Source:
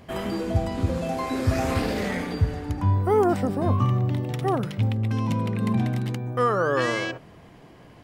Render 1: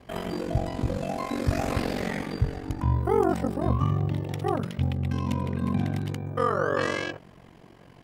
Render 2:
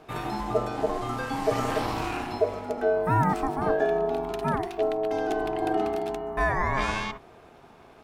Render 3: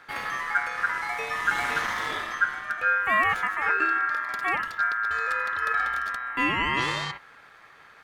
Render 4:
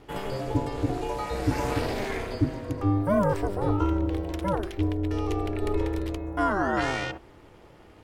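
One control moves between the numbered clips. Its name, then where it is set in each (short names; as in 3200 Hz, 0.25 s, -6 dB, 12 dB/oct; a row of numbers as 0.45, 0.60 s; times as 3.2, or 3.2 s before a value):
ring modulator, frequency: 23, 540, 1500, 200 Hz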